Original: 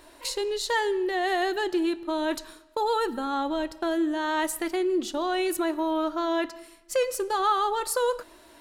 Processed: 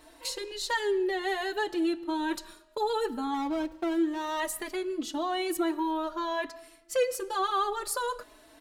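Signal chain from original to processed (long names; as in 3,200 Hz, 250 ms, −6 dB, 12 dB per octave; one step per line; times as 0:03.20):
0:03.34–0:04.40: running median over 25 samples
barber-pole flanger 4.1 ms +0.58 Hz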